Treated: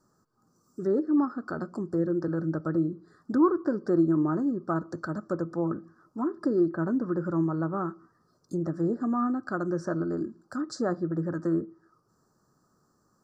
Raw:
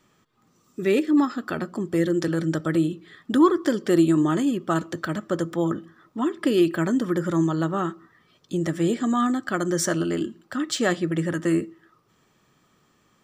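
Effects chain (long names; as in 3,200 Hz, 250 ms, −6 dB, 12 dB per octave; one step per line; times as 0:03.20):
elliptic band-stop filter 1,500–4,700 Hz, stop band 60 dB
treble cut that deepens with the level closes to 2,000 Hz, closed at −20.5 dBFS
level −4.5 dB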